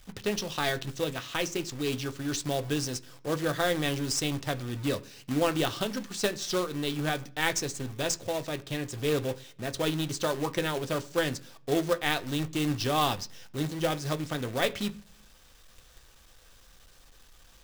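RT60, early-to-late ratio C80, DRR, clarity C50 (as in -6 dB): 0.50 s, 24.5 dB, 8.5 dB, 20.5 dB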